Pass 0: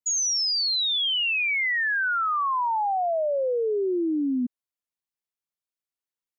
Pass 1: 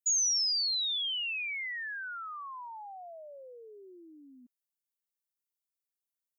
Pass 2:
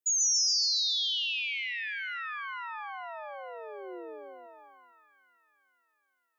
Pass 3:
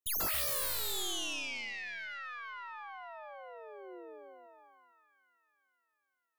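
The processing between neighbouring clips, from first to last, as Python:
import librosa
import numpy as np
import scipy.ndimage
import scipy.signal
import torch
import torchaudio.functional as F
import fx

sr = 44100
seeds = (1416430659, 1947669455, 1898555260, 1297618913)

y1 = np.diff(x, prepend=0.0)
y1 = y1 * librosa.db_to_amplitude(-1.5)
y2 = fx.echo_split(y1, sr, split_hz=2500.0, low_ms=454, high_ms=138, feedback_pct=52, wet_db=-3.0)
y2 = fx.filter_sweep_highpass(y2, sr, from_hz=310.0, to_hz=1500.0, start_s=3.83, end_s=5.13, q=2.9)
y3 = fx.tracing_dist(y2, sr, depth_ms=0.23)
y3 = y3 * librosa.db_to_amplitude(-6.5)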